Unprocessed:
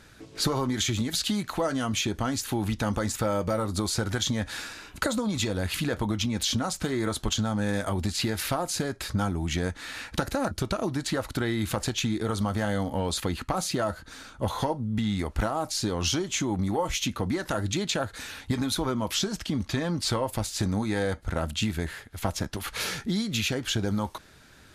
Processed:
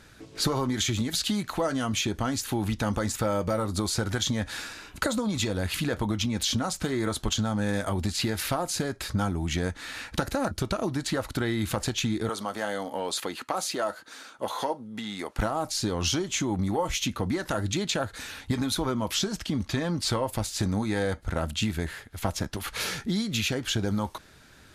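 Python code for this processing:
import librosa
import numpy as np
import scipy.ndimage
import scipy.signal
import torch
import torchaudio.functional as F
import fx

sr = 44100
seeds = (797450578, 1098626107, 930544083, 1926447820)

y = fx.highpass(x, sr, hz=350.0, slope=12, at=(12.29, 15.39))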